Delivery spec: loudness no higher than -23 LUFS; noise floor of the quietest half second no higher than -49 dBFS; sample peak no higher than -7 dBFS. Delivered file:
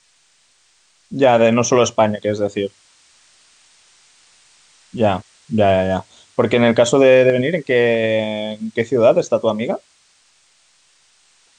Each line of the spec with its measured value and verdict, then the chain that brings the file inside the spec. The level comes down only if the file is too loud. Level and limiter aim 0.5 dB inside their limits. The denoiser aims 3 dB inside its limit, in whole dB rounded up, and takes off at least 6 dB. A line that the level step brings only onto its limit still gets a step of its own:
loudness -16.5 LUFS: fail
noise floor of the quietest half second -58 dBFS: OK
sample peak -2.0 dBFS: fail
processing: gain -7 dB

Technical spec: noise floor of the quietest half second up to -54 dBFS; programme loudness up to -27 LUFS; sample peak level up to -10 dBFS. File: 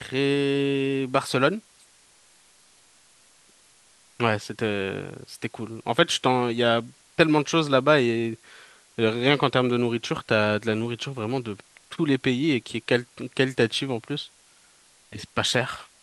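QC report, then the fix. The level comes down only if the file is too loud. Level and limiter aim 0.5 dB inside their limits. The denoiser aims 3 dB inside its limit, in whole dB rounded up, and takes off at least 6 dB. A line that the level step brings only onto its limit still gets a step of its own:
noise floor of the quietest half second -57 dBFS: OK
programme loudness -24.5 LUFS: fail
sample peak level -3.0 dBFS: fail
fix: gain -3 dB; limiter -10.5 dBFS

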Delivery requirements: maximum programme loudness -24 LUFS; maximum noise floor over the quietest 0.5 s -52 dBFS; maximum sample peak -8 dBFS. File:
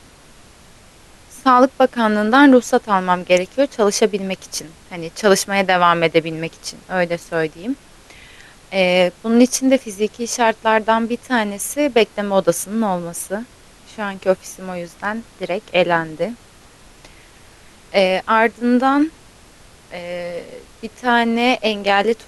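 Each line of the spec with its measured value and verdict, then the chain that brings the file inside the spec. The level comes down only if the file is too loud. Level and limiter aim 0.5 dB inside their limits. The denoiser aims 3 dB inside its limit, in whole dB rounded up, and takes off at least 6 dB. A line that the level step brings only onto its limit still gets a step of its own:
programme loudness -17.5 LUFS: fail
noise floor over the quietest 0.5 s -46 dBFS: fail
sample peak -1.5 dBFS: fail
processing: gain -7 dB

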